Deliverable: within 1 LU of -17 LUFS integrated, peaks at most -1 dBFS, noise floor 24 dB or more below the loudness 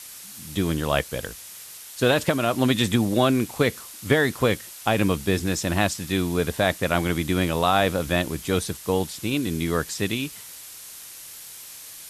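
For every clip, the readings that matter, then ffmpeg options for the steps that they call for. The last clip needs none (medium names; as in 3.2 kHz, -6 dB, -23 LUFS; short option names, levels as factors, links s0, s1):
noise floor -42 dBFS; noise floor target -48 dBFS; loudness -23.5 LUFS; peak level -6.5 dBFS; loudness target -17.0 LUFS
-> -af "afftdn=nr=6:nf=-42"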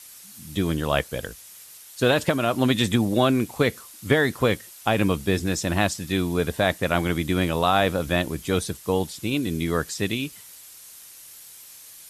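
noise floor -46 dBFS; noise floor target -48 dBFS
-> -af "afftdn=nr=6:nf=-46"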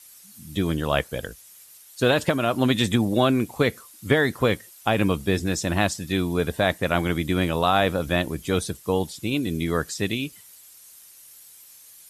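noise floor -49 dBFS; loudness -24.0 LUFS; peak level -7.0 dBFS; loudness target -17.0 LUFS
-> -af "volume=2.24,alimiter=limit=0.891:level=0:latency=1"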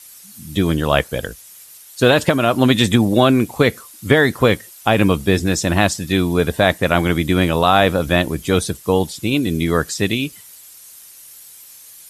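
loudness -17.0 LUFS; peak level -1.0 dBFS; noise floor -42 dBFS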